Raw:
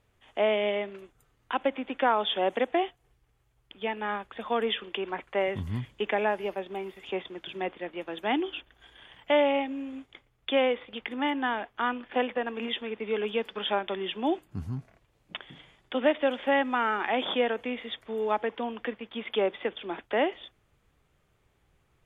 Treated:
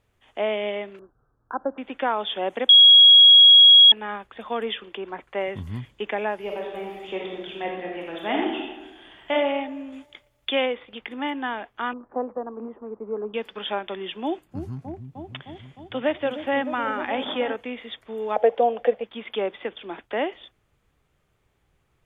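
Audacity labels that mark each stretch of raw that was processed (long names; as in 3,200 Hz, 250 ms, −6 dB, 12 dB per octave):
0.990000	1.780000	Butterworth low-pass 1,600 Hz 96 dB per octave
2.690000	3.920000	beep over 3,310 Hz −7.5 dBFS
4.780000	5.300000	dynamic equaliser 2,600 Hz, up to −5 dB, over −47 dBFS, Q 1.3
6.440000	9.330000	thrown reverb, RT60 1.2 s, DRR −1.5 dB
9.920000	10.660000	high-shelf EQ 2,500 Hz +9.5 dB
11.930000	13.340000	Chebyshev low-pass filter 1,200 Hz, order 4
14.230000	17.560000	echo whose low-pass opens from repeat to repeat 307 ms, low-pass from 400 Hz, each repeat up 1 octave, level −6 dB
18.360000	19.040000	flat-topped bell 600 Hz +16 dB 1 octave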